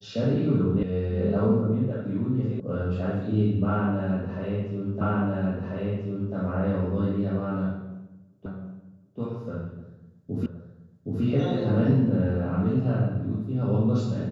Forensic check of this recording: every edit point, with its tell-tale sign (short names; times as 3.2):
0.83 sound cut off
2.6 sound cut off
5.01 repeat of the last 1.34 s
8.46 repeat of the last 0.73 s
10.46 repeat of the last 0.77 s